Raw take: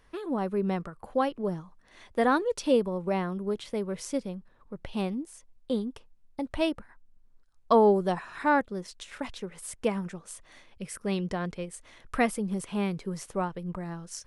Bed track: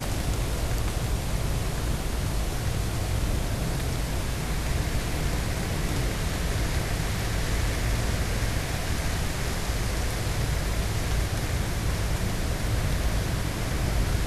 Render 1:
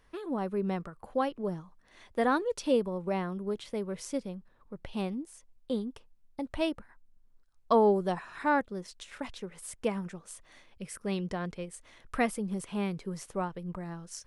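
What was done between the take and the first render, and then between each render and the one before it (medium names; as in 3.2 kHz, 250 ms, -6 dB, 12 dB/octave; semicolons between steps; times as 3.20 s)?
trim -3 dB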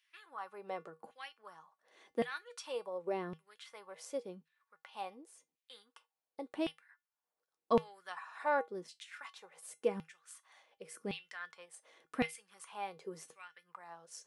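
LFO high-pass saw down 0.9 Hz 240–2800 Hz; feedback comb 160 Hz, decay 0.17 s, harmonics odd, mix 70%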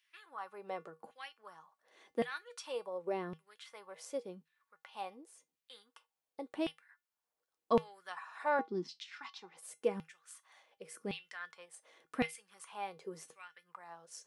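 8.59–9.57 s: FFT filter 100 Hz 0 dB, 220 Hz +12 dB, 340 Hz +11 dB, 560 Hz -13 dB, 810 Hz +4 dB, 1.6 kHz -2 dB, 5.2 kHz +7 dB, 9.5 kHz -16 dB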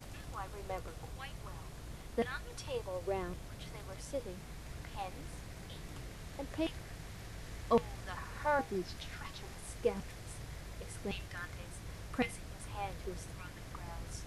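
add bed track -20 dB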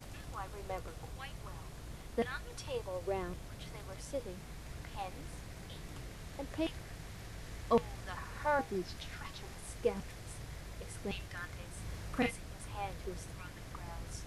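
11.73–12.31 s: doubling 38 ms -2.5 dB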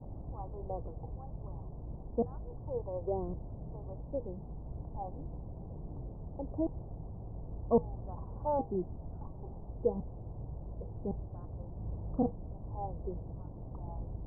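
steep low-pass 930 Hz 48 dB/octave; bass shelf 430 Hz +5 dB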